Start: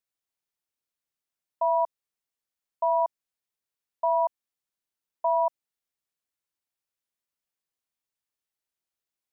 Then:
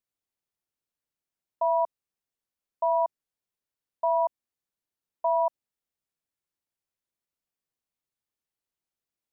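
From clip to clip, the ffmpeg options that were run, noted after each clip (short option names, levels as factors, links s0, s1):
-af "tiltshelf=f=680:g=3.5"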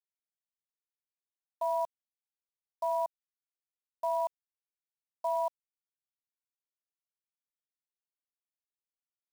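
-af "acrusher=bits=8:dc=4:mix=0:aa=0.000001,volume=0.473"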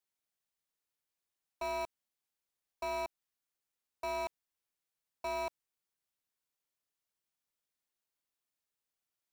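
-af "asoftclip=type=tanh:threshold=0.01,volume=1.88"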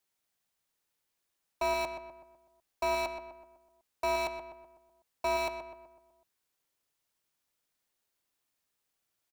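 -filter_complex "[0:a]asplit=2[s0][s1];[s1]adelay=125,lowpass=f=2000:p=1,volume=0.447,asplit=2[s2][s3];[s3]adelay=125,lowpass=f=2000:p=1,volume=0.51,asplit=2[s4][s5];[s5]adelay=125,lowpass=f=2000:p=1,volume=0.51,asplit=2[s6][s7];[s7]adelay=125,lowpass=f=2000:p=1,volume=0.51,asplit=2[s8][s9];[s9]adelay=125,lowpass=f=2000:p=1,volume=0.51,asplit=2[s10][s11];[s11]adelay=125,lowpass=f=2000:p=1,volume=0.51[s12];[s0][s2][s4][s6][s8][s10][s12]amix=inputs=7:normalize=0,volume=2.24"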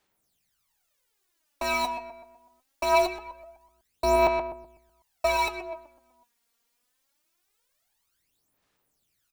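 -af "aphaser=in_gain=1:out_gain=1:delay=4.3:decay=0.73:speed=0.23:type=sinusoidal,volume=1.58"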